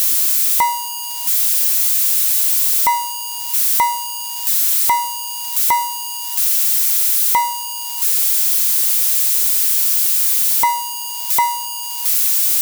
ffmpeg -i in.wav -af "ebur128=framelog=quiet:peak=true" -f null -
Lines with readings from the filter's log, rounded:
Integrated loudness:
  I:         -13.7 LUFS
  Threshold: -23.7 LUFS
Loudness range:
  LRA:         2.8 LU
  Threshold: -33.7 LUFS
  LRA low:   -15.2 LUFS
  LRA high:  -12.4 LUFS
True peak:
  Peak:       -5.7 dBFS